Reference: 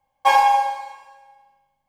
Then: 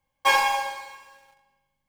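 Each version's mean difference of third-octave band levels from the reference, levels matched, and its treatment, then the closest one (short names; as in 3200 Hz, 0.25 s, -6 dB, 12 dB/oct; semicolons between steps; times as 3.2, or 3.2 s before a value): 5.0 dB: bell 750 Hz -15 dB 0.67 oct; in parallel at -8.5 dB: companded quantiser 4-bit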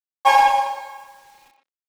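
2.0 dB: bit-crush 9-bit; speakerphone echo 0.12 s, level -7 dB; gain +1 dB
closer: second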